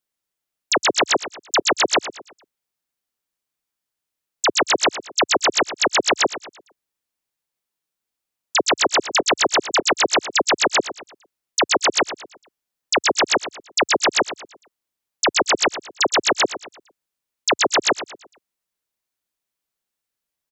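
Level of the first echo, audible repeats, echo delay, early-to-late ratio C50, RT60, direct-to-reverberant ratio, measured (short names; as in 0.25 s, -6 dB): -13.0 dB, 3, 0.114 s, none, none, none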